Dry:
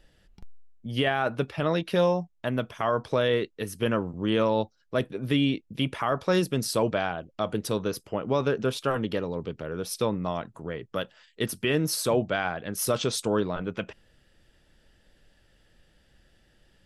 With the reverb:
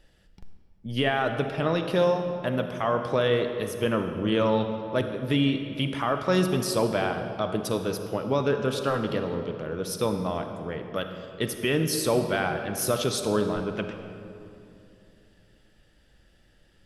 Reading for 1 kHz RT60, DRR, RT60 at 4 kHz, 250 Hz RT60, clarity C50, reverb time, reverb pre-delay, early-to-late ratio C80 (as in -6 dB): 2.5 s, 6.5 dB, 1.5 s, 3.5 s, 7.0 dB, 2.7 s, 37 ms, 7.5 dB